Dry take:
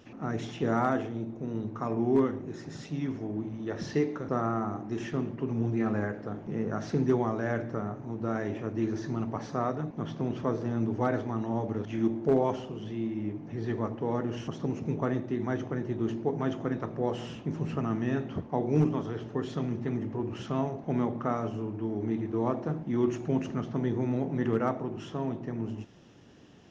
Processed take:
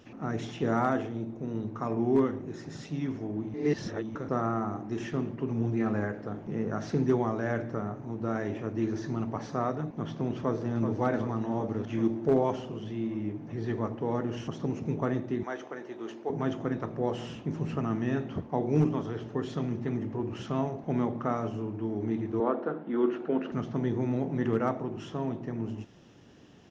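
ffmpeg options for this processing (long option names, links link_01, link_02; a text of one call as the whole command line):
ffmpeg -i in.wav -filter_complex "[0:a]asplit=2[link_01][link_02];[link_02]afade=type=in:start_time=10.37:duration=0.01,afade=type=out:start_time=10.89:duration=0.01,aecho=0:1:380|760|1140|1520|1900|2280|2660|3040|3420|3800|4180:0.421697|0.295188|0.206631|0.144642|0.101249|0.0708745|0.0496122|0.0347285|0.02431|0.017017|0.0119119[link_03];[link_01][link_03]amix=inputs=2:normalize=0,asettb=1/sr,asplit=3[link_04][link_05][link_06];[link_04]atrim=end=15.434[link_07];[link_05]atrim=start=15.43:end=16.3,asetpts=PTS-STARTPTS,afade=type=in:duration=0.004:curve=qsin,afade=type=out:start_time=0.866:duration=0.004:curve=qsin,highpass=490[link_08];[link_06]atrim=start=16.296[link_09];[link_07][link_08]acrossfade=duration=0.004:curve1=hsin:curve2=qsin[link_10];[link_10][link_09]acrossfade=duration=0.004:curve1=qsin:curve2=hsin,asettb=1/sr,asplit=3[link_11][link_12][link_13];[link_11]atrim=end=22.404[link_14];[link_12]atrim=start=22.4:end=23.52,asetpts=PTS-STARTPTS,afade=type=in:duration=0.004:curve=qsin,afade=type=out:start_time=1.116:duration=0.004:curve=qsin,highpass=frequency=220:width=0.5412,highpass=frequency=220:width=1.3066,equalizer=frequency=470:width_type=q:width=4:gain=6,equalizer=frequency=1400:width_type=q:width=4:gain=9,equalizer=frequency=2300:width_type=q:width=4:gain=-4,lowpass=frequency=3700:width=0.5412,lowpass=frequency=3700:width=1.3066[link_15];[link_13]atrim=start=23.516[link_16];[link_14][link_15]acrossfade=duration=0.004:curve1=hsin:curve2=qsin[link_17];[link_17][link_16]acrossfade=duration=0.004:curve1=qsin:curve2=hsin,asplit=3[link_18][link_19][link_20];[link_18]atrim=end=3.542[link_21];[link_19]atrim=start=3.538:end=4.152,asetpts=PTS-STARTPTS,areverse[link_22];[link_20]atrim=start=4.148[link_23];[link_21][link_22]acrossfade=duration=0.004:curve1=hsin:curve2=hsin[link_24];[link_24][link_23]acrossfade=duration=0.004:curve1=hsin:curve2=hsin" out.wav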